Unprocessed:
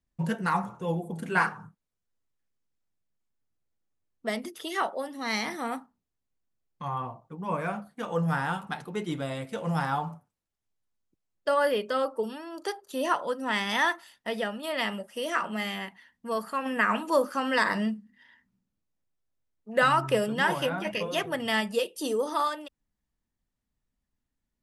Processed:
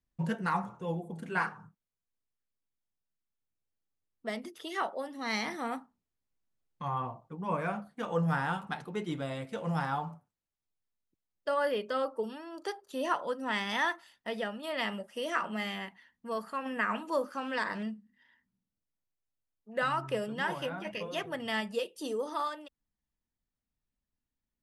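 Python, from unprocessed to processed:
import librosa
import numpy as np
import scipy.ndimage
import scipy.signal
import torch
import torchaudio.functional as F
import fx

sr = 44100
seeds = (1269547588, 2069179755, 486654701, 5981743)

y = fx.doppler_dist(x, sr, depth_ms=0.14, at=(17.37, 17.83))
y = fx.rider(y, sr, range_db=10, speed_s=2.0)
y = fx.high_shelf(y, sr, hz=10000.0, db=-10.0)
y = y * librosa.db_to_amplitude(-5.5)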